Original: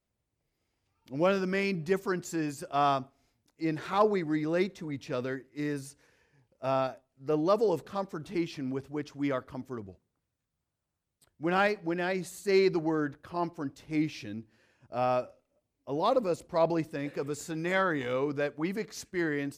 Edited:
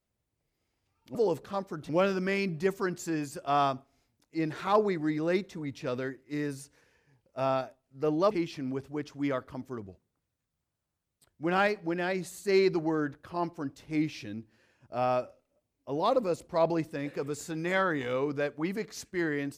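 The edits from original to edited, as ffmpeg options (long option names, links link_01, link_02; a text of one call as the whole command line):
ffmpeg -i in.wav -filter_complex "[0:a]asplit=4[link_01][link_02][link_03][link_04];[link_01]atrim=end=1.152[link_05];[link_02]atrim=start=7.568:end=8.312[link_06];[link_03]atrim=start=1.148:end=7.572[link_07];[link_04]atrim=start=8.308[link_08];[link_05][link_06]acrossfade=duration=0.004:curve1=hsin:curve2=hsin[link_09];[link_09][link_07]acrossfade=duration=0.004:curve1=hsin:curve2=hsin[link_10];[link_10][link_08]acrossfade=duration=0.004:curve1=hsin:curve2=hsin" out.wav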